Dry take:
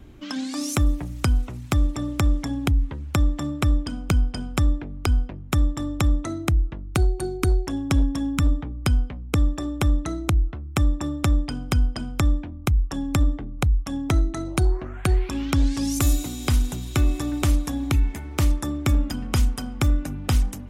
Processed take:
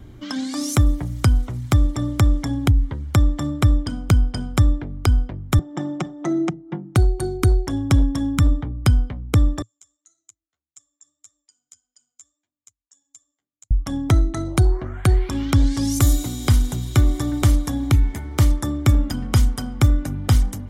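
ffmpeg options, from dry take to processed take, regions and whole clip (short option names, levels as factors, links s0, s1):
-filter_complex "[0:a]asettb=1/sr,asplit=3[s0][s1][s2];[s0]atrim=end=5.594[s3];[s1]atrim=start=5.59:end=6.96,asetpts=PTS-STARTPTS,afade=t=in:d=0.004:c=qsin,afade=t=out:st=1.366:d=0.004:c=qsin,aecho=1:1:5.6:0.85,atrim=end_sample=60417,acompressor=threshold=0.0562:ratio=6:attack=3.2:release=140:knee=1:detection=peak,highpass=f=160:w=0.5412,highpass=f=160:w=1.3066,equalizer=f=160:t=q:w=4:g=10,equalizer=f=350:t=q:w=4:g=7,equalizer=f=760:t=q:w=4:g=9,equalizer=f=4200:t=q:w=4:g=-10,lowpass=f=6500:w=0.5412,lowpass=f=6500:w=1.3066[s4];[s2]atrim=start=6.956[s5];[s3][s4]acrossfade=d=0.004:c1=hsin:c2=qsin[s6];[s6][s5]acrossfade=d=0.004:c1=qsin:c2=hsin,asettb=1/sr,asplit=3[s7][s8][s9];[s7]atrim=end=9.624[s10];[s8]atrim=start=9.62:end=13.71,asetpts=PTS-STARTPTS,afade=t=in:d=0.004:c=qsin,afade=t=out:st=4.086:d=0.004:c=qsin,flanger=delay=6.4:depth=7.4:regen=1:speed=1.7:shape=triangular,bandpass=f=7000:t=q:w=16[s11];[s9]atrim=start=13.706[s12];[s10][s11]acrossfade=d=0.004:c1=hsin:c2=qsin[s13];[s13][s12]acrossfade=d=0.004:c1=qsin:c2=hsin,equalizer=f=110:t=o:w=0.5:g=8,bandreject=f=2600:w=6.8,volume=1.33"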